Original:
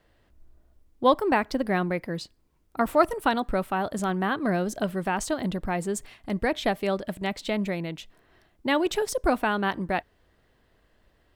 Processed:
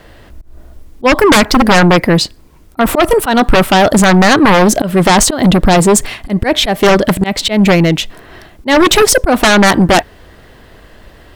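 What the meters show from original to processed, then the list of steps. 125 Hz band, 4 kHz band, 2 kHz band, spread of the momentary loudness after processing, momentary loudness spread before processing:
+20.0 dB, +22.5 dB, +18.0 dB, 7 LU, 10 LU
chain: volume swells 193 ms
sine wavefolder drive 15 dB, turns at −9.5 dBFS
level +6 dB

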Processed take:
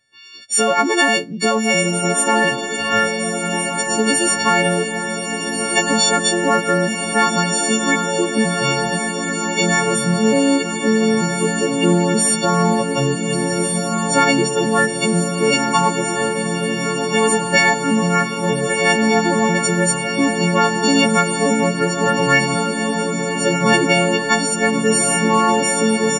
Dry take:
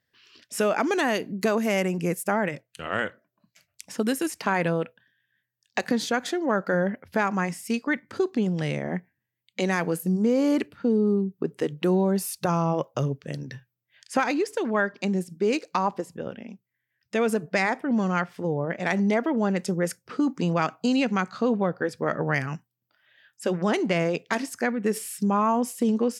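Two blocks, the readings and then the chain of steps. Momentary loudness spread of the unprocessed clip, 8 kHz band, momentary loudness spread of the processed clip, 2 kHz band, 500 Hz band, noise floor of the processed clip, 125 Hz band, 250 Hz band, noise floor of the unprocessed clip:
8 LU, +20.0 dB, 5 LU, +12.5 dB, +8.0 dB, −24 dBFS, +8.0 dB, +7.0 dB, −81 dBFS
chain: every partial snapped to a pitch grid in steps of 4 semitones
feedback delay with all-pass diffusion 1,448 ms, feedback 72%, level −5 dB
downsampling to 22,050 Hz
level +5.5 dB

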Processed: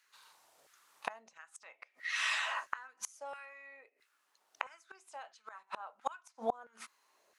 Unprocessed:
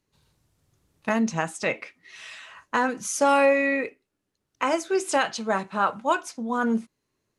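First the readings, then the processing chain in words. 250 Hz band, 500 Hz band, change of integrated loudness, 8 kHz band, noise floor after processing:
−30.0 dB, −22.0 dB, −14.5 dB, −14.0 dB, −77 dBFS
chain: auto-filter high-pass saw down 1.5 Hz 580–1,600 Hz
gate with flip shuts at −26 dBFS, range −36 dB
level +7 dB

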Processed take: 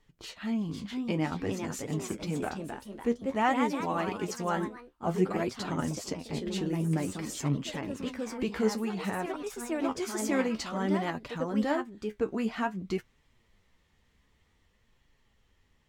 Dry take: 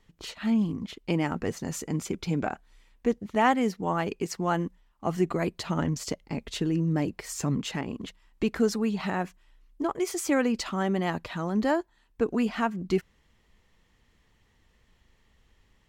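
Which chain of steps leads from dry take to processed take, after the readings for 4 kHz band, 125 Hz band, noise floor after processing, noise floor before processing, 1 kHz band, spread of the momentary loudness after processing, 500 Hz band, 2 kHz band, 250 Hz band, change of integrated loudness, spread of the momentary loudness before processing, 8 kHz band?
−2.5 dB, −3.0 dB, −69 dBFS, −66 dBFS, −2.5 dB, 7 LU, −2.5 dB, −2.5 dB, −3.0 dB, −3.0 dB, 9 LU, −3.0 dB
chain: delay with pitch and tempo change per echo 527 ms, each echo +2 semitones, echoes 3, each echo −6 dB
flanger 0.53 Hz, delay 6.6 ms, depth 8.9 ms, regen +46%

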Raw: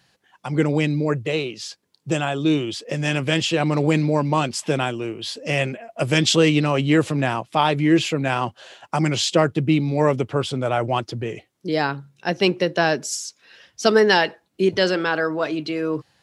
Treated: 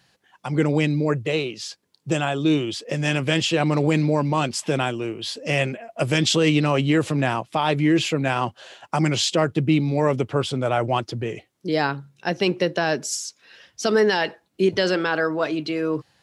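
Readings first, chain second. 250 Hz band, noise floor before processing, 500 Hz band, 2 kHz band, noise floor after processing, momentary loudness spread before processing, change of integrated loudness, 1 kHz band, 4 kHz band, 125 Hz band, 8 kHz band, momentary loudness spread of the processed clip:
−1.0 dB, −67 dBFS, −1.5 dB, −1.5 dB, −67 dBFS, 11 LU, −1.0 dB, −1.5 dB, −1.5 dB, −0.5 dB, −0.5 dB, 9 LU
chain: brickwall limiter −9.5 dBFS, peak gain reduction 7 dB

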